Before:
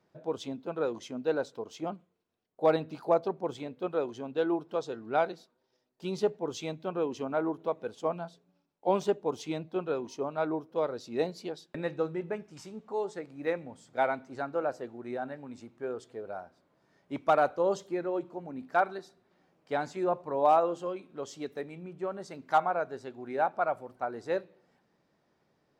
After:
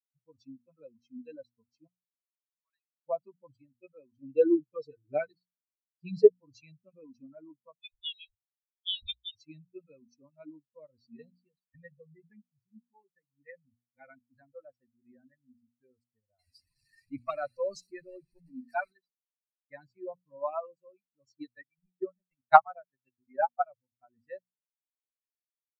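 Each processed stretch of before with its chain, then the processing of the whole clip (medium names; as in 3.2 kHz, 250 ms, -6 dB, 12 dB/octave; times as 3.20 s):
1.87–3.05 s: compression 4:1, threshold -27 dBFS + ladder high-pass 930 Hz, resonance 25% + tilt EQ -1.5 dB/octave
4.22–6.29 s: peaking EQ 410 Hz +10 dB 0.58 oct + comb 6.6 ms, depth 94%
7.76–9.35 s: tilt EQ +4 dB/octave + frequency inversion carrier 4 kHz
11.17–14.10 s: distance through air 170 m + comb of notches 320 Hz
16.39–18.93 s: jump at every zero crossing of -40 dBFS + treble shelf 2.7 kHz +7.5 dB
21.32–23.62 s: peaking EQ 7.5 kHz -14 dB 0.5 oct + transient shaper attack +10 dB, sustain -6 dB + three bands expanded up and down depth 40%
whole clip: expander on every frequency bin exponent 3; low-pass 3.9 kHz 12 dB/octave; hum notches 60/120/180/240 Hz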